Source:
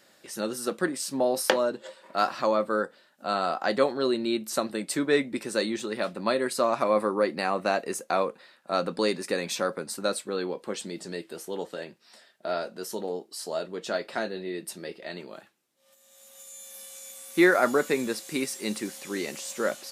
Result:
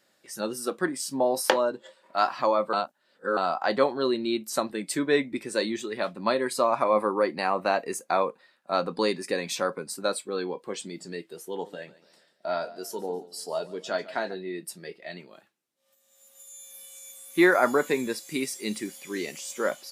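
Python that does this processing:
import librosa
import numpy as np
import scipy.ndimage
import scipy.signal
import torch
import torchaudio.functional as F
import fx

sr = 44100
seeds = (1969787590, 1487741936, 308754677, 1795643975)

y = fx.echo_warbled(x, sr, ms=144, feedback_pct=45, rate_hz=2.8, cents=56, wet_db=-13.0, at=(11.52, 14.35))
y = fx.edit(y, sr, fx.reverse_span(start_s=2.73, length_s=0.64), tone=tone)
y = fx.noise_reduce_blind(y, sr, reduce_db=8)
y = fx.dynamic_eq(y, sr, hz=930.0, q=3.0, threshold_db=-44.0, ratio=4.0, max_db=5)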